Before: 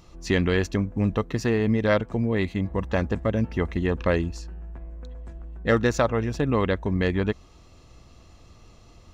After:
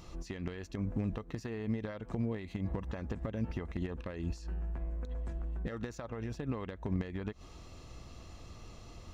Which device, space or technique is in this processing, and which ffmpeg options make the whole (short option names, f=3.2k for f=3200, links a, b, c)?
de-esser from a sidechain: -filter_complex "[0:a]asplit=2[a][b];[b]highpass=f=4.7k:p=1,apad=whole_len=403064[c];[a][c]sidechaincompress=threshold=-56dB:ratio=4:attack=0.74:release=74,volume=1dB"